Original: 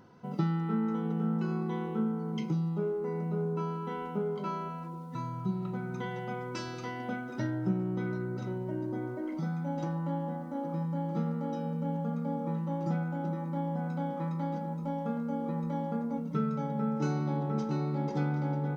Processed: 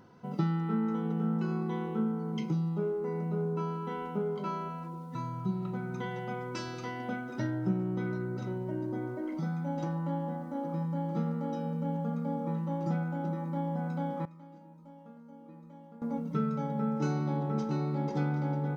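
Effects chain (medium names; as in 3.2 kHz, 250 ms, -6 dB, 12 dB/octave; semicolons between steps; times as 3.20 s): 14.25–16.02 s: feedback comb 310 Hz, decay 0.43 s, harmonics all, mix 90%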